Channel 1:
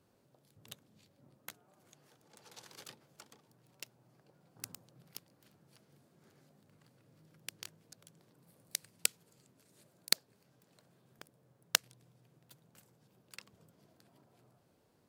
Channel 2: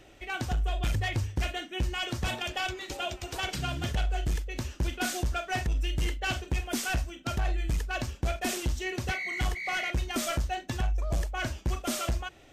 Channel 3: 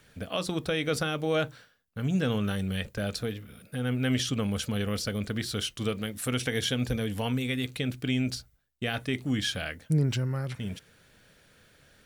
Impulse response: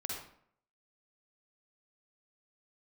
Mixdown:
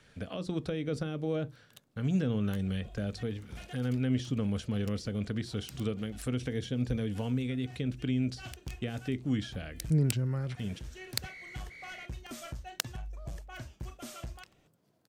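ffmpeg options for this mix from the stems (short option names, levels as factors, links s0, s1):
-filter_complex "[0:a]adelay=1050,volume=0.531[s0];[1:a]equalizer=f=130:t=o:w=0.77:g=7,adelay=2150,volume=0.211[s1];[2:a]lowpass=8000,acrossover=split=480[s2][s3];[s3]acompressor=threshold=0.00794:ratio=6[s4];[s2][s4]amix=inputs=2:normalize=0,volume=0.841,asplit=2[s5][s6];[s6]apad=whole_len=647030[s7];[s1][s7]sidechaincompress=threshold=0.00316:ratio=4:attack=5.1:release=114[s8];[s0][s8][s5]amix=inputs=3:normalize=0"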